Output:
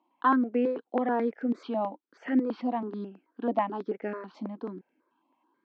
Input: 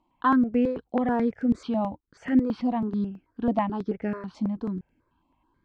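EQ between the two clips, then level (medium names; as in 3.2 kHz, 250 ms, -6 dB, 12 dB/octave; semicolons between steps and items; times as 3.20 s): high-pass 270 Hz 24 dB/octave; distance through air 150 m; 0.0 dB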